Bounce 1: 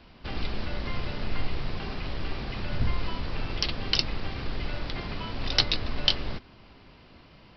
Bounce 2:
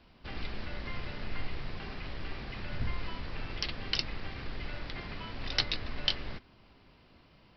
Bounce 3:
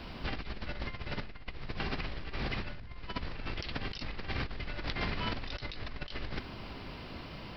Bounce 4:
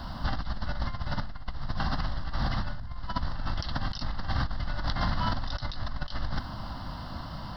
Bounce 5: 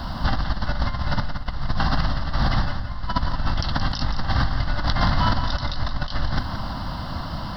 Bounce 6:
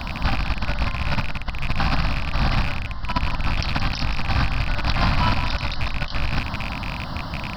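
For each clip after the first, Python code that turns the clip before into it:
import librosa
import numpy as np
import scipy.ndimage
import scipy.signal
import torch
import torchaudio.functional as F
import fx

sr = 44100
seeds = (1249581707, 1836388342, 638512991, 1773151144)

y1 = fx.dynamic_eq(x, sr, hz=1900.0, q=1.6, threshold_db=-48.0, ratio=4.0, max_db=5)
y1 = y1 * librosa.db_to_amplitude(-7.5)
y2 = fx.over_compress(y1, sr, threshold_db=-45.0, ratio=-1.0)
y2 = y2 * librosa.db_to_amplitude(7.0)
y3 = fx.fixed_phaser(y2, sr, hz=1000.0, stages=4)
y3 = y3 * librosa.db_to_amplitude(9.0)
y4 = fx.echo_feedback(y3, sr, ms=173, feedback_pct=35, wet_db=-9)
y4 = y4 * librosa.db_to_amplitude(8.0)
y5 = fx.rattle_buzz(y4, sr, strikes_db=-28.0, level_db=-17.0)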